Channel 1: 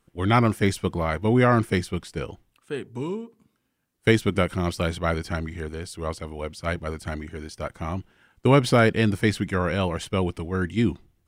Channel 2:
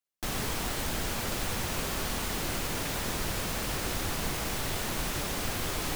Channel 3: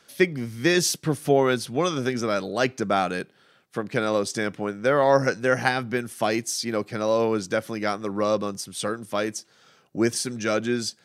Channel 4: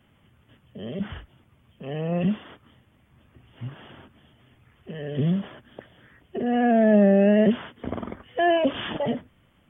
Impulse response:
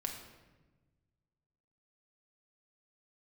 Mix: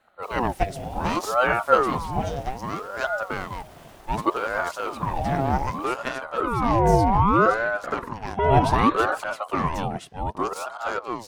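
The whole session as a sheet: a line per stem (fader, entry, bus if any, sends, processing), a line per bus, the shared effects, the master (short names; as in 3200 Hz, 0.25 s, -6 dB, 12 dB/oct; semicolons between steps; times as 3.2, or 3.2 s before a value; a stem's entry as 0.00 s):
-4.5 dB, 0.00 s, no send, auto swell 0.136 s
-11.5 dB, 0.00 s, no send, limiter -29.5 dBFS, peak gain reduction 11 dB
-6.0 dB, 0.40 s, no send, half-wave gain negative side -12 dB
+1.0 dB, 0.00 s, no send, rippled Chebyshev high-pass 210 Hz, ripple 6 dB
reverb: off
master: bell 420 Hz +14.5 dB 0.52 oct; ring modulator with a swept carrier 660 Hz, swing 60%, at 0.65 Hz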